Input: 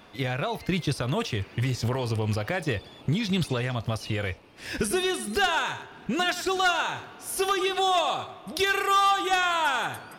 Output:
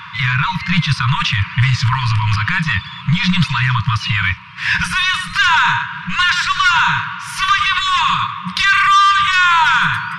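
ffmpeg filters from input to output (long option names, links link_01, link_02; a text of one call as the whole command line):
ffmpeg -i in.wav -af "highpass=150,lowpass=2700,apsyclip=31dB,afftfilt=real='re*(1-between(b*sr/4096,190,920))':imag='im*(1-between(b*sr/4096,190,920))':win_size=4096:overlap=0.75,volume=-7.5dB" out.wav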